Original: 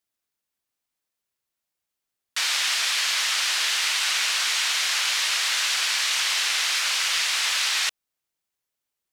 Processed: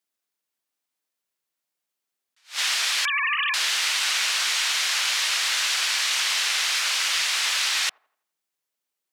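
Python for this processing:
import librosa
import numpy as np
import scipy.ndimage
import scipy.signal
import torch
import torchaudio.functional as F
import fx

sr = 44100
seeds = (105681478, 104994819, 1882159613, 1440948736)

y = fx.sine_speech(x, sr, at=(3.05, 3.54))
y = scipy.signal.sosfilt(scipy.signal.butter(2, 190.0, 'highpass', fs=sr, output='sos'), y)
y = fx.echo_wet_bandpass(y, sr, ms=84, feedback_pct=40, hz=500.0, wet_db=-21.0)
y = fx.attack_slew(y, sr, db_per_s=250.0)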